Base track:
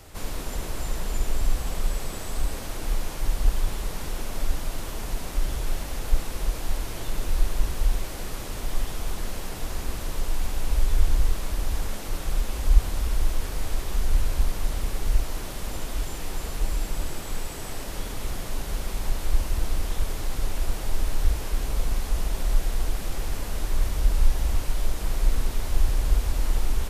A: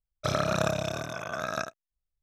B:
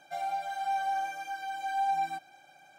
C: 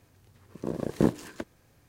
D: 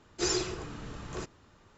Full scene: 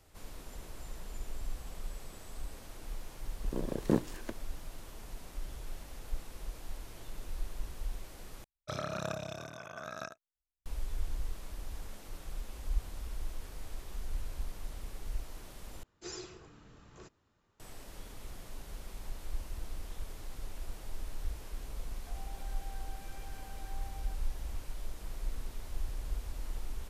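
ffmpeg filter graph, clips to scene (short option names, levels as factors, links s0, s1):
-filter_complex "[0:a]volume=0.168[s0];[2:a]acompressor=threshold=0.0112:ratio=6:attack=3.2:release=140:knee=1:detection=peak[s1];[s0]asplit=3[s2][s3][s4];[s2]atrim=end=8.444[s5];[1:a]atrim=end=2.22,asetpts=PTS-STARTPTS,volume=0.299[s6];[s3]atrim=start=10.656:end=15.834[s7];[4:a]atrim=end=1.77,asetpts=PTS-STARTPTS,volume=0.188[s8];[s4]atrim=start=17.596[s9];[3:a]atrim=end=1.88,asetpts=PTS-STARTPTS,volume=0.562,afade=t=in:d=0.004:c=hsin,afade=t=out:st=1.876:d=0.004:c=hsin,adelay=2890[s10];[s1]atrim=end=2.78,asetpts=PTS-STARTPTS,volume=0.224,afade=t=in:d=0.004:c=hsin,afade=t=out:st=2.776:d=0.004:c=hsin,adelay=968436S[s11];[s5][s6]acrossfade=d=0.004:c1=hsin:c2=hsin[s12];[s12][s7]acrossfade=d=0.004:c1=hsin:c2=hsin[s13];[s13][s8]acrossfade=d=0.004:c1=hsin:c2=hsin[s14];[s14][s9]acrossfade=d=0.004:c1=hsin:c2=hsin[s15];[s15][s10][s11]amix=inputs=3:normalize=0"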